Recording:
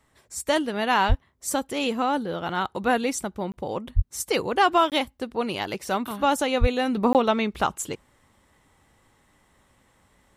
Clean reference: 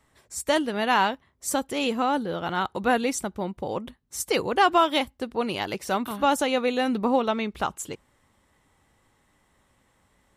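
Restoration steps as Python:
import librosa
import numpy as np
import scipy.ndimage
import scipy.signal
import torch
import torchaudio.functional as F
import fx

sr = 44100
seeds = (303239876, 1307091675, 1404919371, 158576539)

y = fx.fix_deplosive(x, sr, at_s=(1.08, 3.95, 6.6))
y = fx.fix_interpolate(y, sr, at_s=(3.52, 4.9, 7.13), length_ms=18.0)
y = fx.gain(y, sr, db=fx.steps((0.0, 0.0), (6.97, -3.5)))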